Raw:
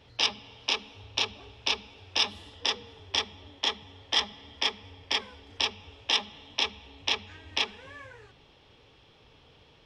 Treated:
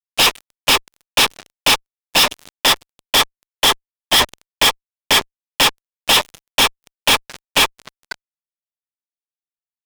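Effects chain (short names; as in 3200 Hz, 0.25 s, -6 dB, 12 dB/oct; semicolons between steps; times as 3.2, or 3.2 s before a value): median-filter separation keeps percussive; fuzz box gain 46 dB, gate -47 dBFS; gain +3 dB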